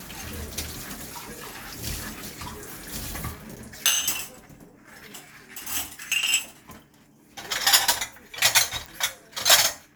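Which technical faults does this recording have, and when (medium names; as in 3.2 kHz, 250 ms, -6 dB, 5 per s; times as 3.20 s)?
3.56–3.57 s: dropout 6.2 ms
8.86 s: pop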